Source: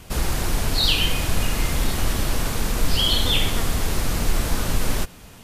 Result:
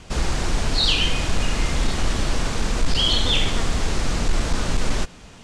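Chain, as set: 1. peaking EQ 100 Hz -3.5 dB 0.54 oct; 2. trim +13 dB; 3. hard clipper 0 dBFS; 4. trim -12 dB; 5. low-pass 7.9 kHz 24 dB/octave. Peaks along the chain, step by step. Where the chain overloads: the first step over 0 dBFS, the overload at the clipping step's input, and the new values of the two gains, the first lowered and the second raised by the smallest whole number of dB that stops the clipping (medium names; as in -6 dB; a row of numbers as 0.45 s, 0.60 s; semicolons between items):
-5.5 dBFS, +7.5 dBFS, 0.0 dBFS, -12.0 dBFS, -10.5 dBFS; step 2, 7.5 dB; step 2 +5 dB, step 4 -4 dB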